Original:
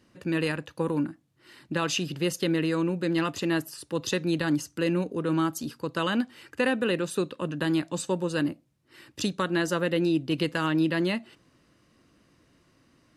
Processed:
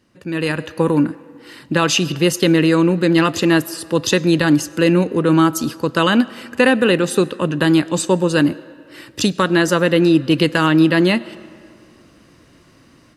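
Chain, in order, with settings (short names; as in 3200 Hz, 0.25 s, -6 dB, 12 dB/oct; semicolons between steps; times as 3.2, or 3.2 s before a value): on a send at -19.5 dB: HPF 210 Hz 24 dB/oct + reverb RT60 2.2 s, pre-delay 60 ms; on the sum: AGC gain up to 11.5 dB; gain +1.5 dB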